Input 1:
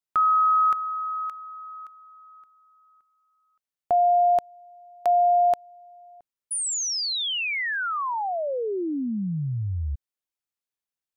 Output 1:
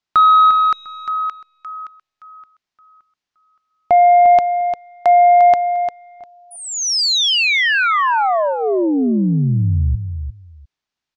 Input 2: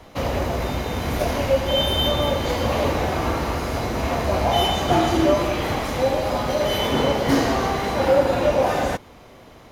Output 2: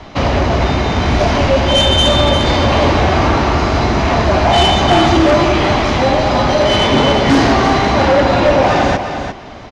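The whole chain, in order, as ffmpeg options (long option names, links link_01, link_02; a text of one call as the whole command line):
ffmpeg -i in.wav -filter_complex "[0:a]lowpass=frequency=5800:width=0.5412,lowpass=frequency=5800:width=1.3066,equalizer=frequency=500:width=7.5:gain=-10,aeval=exprs='0.447*(cos(1*acos(clip(val(0)/0.447,-1,1)))-cos(1*PI/2))+0.0178*(cos(2*acos(clip(val(0)/0.447,-1,1)))-cos(2*PI/2))+0.01*(cos(4*acos(clip(val(0)/0.447,-1,1)))-cos(4*PI/2))+0.141*(cos(5*acos(clip(val(0)/0.447,-1,1)))-cos(5*PI/2))+0.00447*(cos(6*acos(clip(val(0)/0.447,-1,1)))-cos(6*PI/2))':channel_layout=same,asplit=2[link_01][link_02];[link_02]aecho=0:1:350|700:0.376|0.0601[link_03];[link_01][link_03]amix=inputs=2:normalize=0,volume=3.5dB" out.wav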